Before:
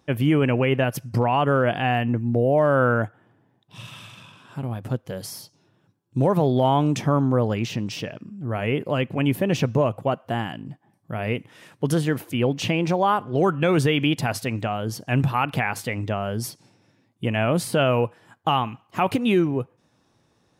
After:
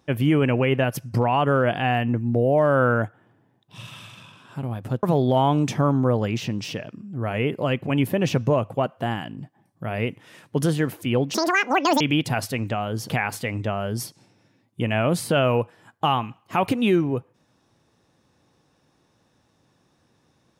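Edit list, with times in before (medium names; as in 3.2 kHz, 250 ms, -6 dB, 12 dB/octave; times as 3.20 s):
5.03–6.31 s: delete
12.62–13.93 s: speed 197%
15.02–15.53 s: delete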